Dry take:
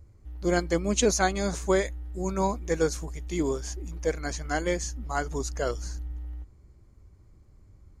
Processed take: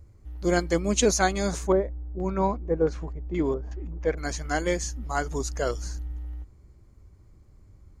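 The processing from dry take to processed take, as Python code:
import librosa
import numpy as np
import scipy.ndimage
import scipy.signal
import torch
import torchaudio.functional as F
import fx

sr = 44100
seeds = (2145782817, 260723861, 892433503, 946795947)

y = fx.filter_lfo_lowpass(x, sr, shape='square', hz=fx.line((1.66, 0.87), (4.17, 4.0)), low_hz=740.0, high_hz=2400.0, q=0.83, at=(1.66, 4.17), fade=0.02)
y = y * 10.0 ** (1.5 / 20.0)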